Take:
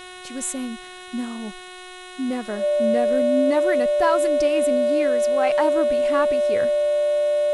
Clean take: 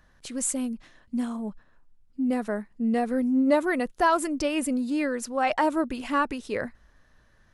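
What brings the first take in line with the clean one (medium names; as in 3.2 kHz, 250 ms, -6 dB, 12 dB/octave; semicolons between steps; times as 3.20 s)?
de-hum 365.4 Hz, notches 11; band-stop 590 Hz, Q 30; noise reduction 20 dB, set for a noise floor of -39 dBFS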